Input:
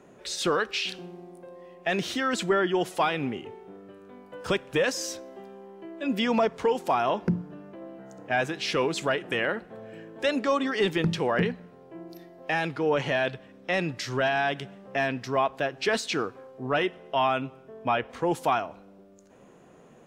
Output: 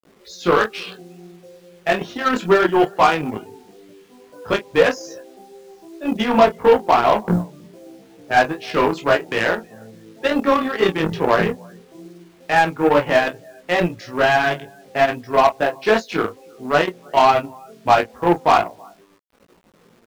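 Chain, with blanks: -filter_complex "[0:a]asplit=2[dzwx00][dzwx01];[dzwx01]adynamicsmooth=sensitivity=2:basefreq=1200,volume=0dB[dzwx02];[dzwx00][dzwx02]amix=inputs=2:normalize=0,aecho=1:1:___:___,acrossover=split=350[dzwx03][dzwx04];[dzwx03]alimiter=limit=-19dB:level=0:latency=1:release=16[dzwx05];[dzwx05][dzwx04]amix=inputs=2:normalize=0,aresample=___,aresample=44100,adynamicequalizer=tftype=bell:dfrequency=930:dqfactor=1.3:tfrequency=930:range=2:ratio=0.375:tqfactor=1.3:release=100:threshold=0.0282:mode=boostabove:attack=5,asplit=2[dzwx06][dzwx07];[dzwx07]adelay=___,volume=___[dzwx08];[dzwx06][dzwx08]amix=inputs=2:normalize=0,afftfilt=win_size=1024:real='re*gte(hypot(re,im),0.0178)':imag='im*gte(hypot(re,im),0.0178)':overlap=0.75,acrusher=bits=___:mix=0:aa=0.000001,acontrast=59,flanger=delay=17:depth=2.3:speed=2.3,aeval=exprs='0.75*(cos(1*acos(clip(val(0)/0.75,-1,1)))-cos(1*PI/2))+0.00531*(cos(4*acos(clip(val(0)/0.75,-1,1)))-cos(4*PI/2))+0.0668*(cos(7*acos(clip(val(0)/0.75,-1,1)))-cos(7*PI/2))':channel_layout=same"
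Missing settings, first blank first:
321, 0.0794, 16000, 28, -6dB, 7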